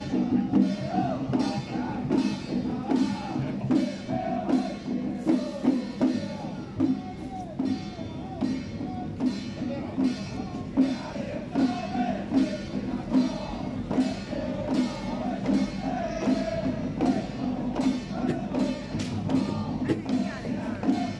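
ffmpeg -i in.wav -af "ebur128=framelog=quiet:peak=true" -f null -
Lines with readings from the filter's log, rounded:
Integrated loudness:
  I:         -28.5 LUFS
  Threshold: -38.5 LUFS
Loudness range:
  LRA:         3.4 LU
  Threshold: -48.7 LUFS
  LRA low:   -31.1 LUFS
  LRA high:  -27.7 LUFS
True peak:
  Peak:      -10.9 dBFS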